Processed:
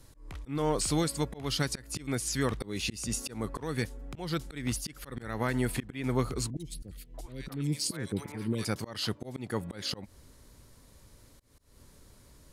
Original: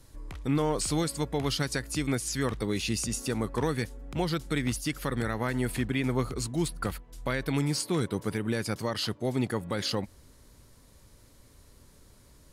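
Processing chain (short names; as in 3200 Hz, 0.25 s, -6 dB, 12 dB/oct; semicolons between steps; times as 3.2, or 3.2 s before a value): auto swell 0.224 s; 6.5–8.65 three bands offset in time lows, highs, mids 60/640 ms, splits 490/2200 Hz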